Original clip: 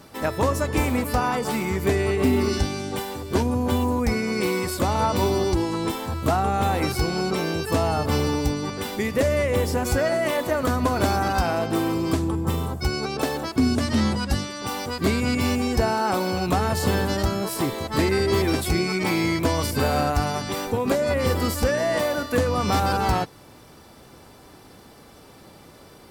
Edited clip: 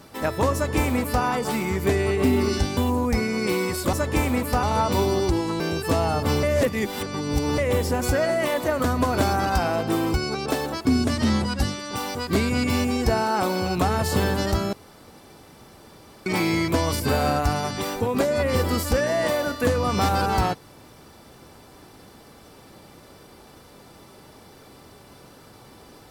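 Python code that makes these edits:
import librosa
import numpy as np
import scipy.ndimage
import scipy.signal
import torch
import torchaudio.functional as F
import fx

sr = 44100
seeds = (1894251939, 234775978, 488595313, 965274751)

y = fx.edit(x, sr, fx.duplicate(start_s=0.54, length_s=0.7, to_s=4.87),
    fx.cut(start_s=2.77, length_s=0.94),
    fx.cut(start_s=5.84, length_s=1.59),
    fx.reverse_span(start_s=8.26, length_s=1.15),
    fx.cut(start_s=11.97, length_s=0.88),
    fx.room_tone_fill(start_s=17.44, length_s=1.53), tone=tone)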